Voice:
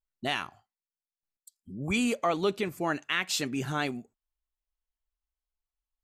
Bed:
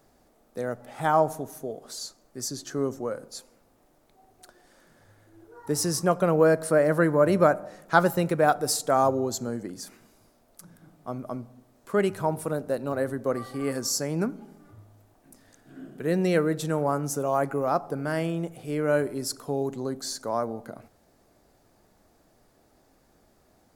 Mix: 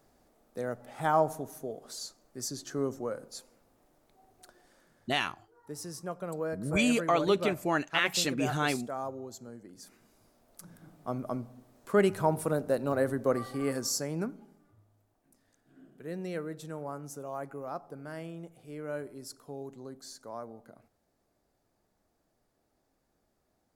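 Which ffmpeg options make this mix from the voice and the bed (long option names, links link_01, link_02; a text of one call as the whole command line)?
ffmpeg -i stem1.wav -i stem2.wav -filter_complex "[0:a]adelay=4850,volume=1dB[link_01];[1:a]volume=10.5dB,afade=type=out:start_time=4.58:duration=0.76:silence=0.281838,afade=type=in:start_time=9.66:duration=1.09:silence=0.188365,afade=type=out:start_time=13.31:duration=1.39:silence=0.223872[link_02];[link_01][link_02]amix=inputs=2:normalize=0" out.wav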